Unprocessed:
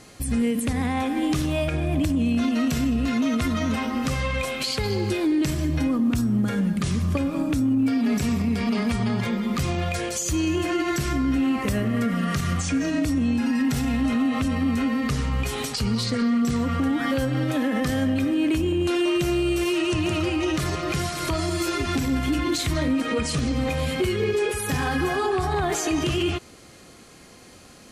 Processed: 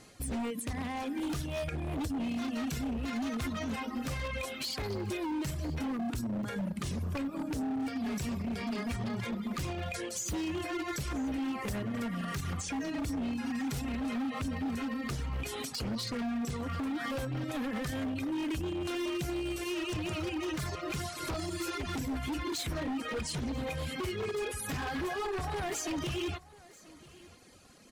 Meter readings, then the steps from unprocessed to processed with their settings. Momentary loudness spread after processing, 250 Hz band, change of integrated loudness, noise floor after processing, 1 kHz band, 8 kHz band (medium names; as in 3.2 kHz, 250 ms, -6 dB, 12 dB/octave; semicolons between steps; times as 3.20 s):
2 LU, -12.0 dB, -11.5 dB, -54 dBFS, -9.5 dB, -9.0 dB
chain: reverb removal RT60 1.1 s; wavefolder -22 dBFS; on a send: delay 987 ms -21 dB; on the sum: trim -7.5 dB